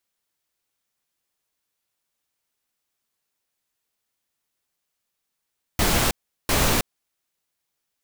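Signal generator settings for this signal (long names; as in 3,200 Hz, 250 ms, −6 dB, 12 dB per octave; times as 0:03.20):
noise bursts pink, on 0.32 s, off 0.38 s, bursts 2, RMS −20 dBFS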